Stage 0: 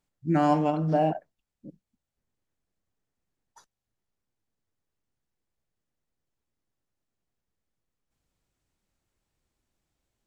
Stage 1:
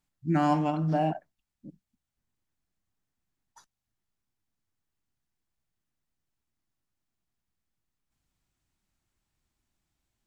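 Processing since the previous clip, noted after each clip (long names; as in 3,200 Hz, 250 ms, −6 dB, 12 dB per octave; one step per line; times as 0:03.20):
parametric band 490 Hz −9 dB 0.7 octaves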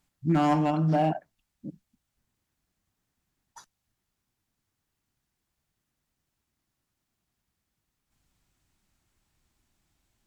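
in parallel at +2 dB: downward compressor 16 to 1, threshold −33 dBFS, peak gain reduction 14 dB
on the sum: asymmetric clip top −17.5 dBFS, bottom −16 dBFS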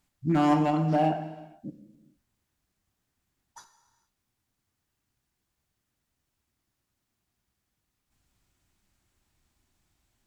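reverb whose tail is shaped and stops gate 490 ms falling, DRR 8 dB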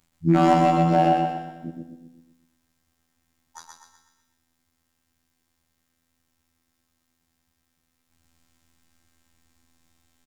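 phases set to zero 83.2 Hz
on a send: repeating echo 124 ms, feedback 45%, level −3.5 dB
on the sum: level +7.5 dB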